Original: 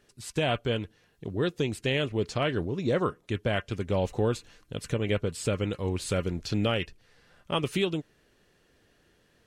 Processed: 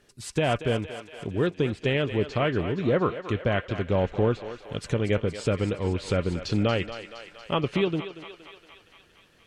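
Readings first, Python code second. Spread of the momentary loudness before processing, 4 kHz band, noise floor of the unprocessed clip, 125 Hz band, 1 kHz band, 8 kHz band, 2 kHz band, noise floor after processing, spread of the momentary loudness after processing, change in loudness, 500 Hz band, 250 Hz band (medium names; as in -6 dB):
8 LU, -0.5 dB, -66 dBFS, +3.0 dB, +3.5 dB, -3.0 dB, +2.5 dB, -59 dBFS, 12 LU, +2.5 dB, +3.5 dB, +3.0 dB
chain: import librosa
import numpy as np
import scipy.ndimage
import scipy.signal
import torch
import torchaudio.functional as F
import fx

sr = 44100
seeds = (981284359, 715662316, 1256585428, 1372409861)

y = fx.env_lowpass_down(x, sr, base_hz=2600.0, full_db=-25.5)
y = fx.echo_thinned(y, sr, ms=233, feedback_pct=70, hz=500.0, wet_db=-10)
y = y * librosa.db_to_amplitude(3.0)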